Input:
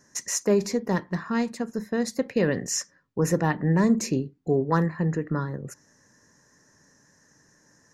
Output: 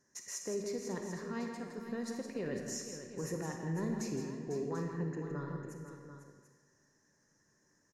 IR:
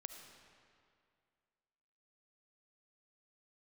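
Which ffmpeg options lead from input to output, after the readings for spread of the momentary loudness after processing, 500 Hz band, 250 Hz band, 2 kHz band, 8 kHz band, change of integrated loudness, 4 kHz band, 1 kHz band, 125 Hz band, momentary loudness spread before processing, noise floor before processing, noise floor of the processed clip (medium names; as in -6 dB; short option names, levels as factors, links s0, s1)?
7 LU, -13.0 dB, -14.0 dB, -14.5 dB, -13.0 dB, -14.0 dB, -12.5 dB, -15.5 dB, -14.0 dB, 7 LU, -62 dBFS, -73 dBFS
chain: -filter_complex "[0:a]equalizer=f=380:t=o:w=0.2:g=7,alimiter=limit=0.168:level=0:latency=1,aecho=1:1:164|499|740:0.398|0.316|0.251[s0];[1:a]atrim=start_sample=2205,asetrate=79380,aresample=44100[s1];[s0][s1]afir=irnorm=-1:irlink=0,volume=0.631"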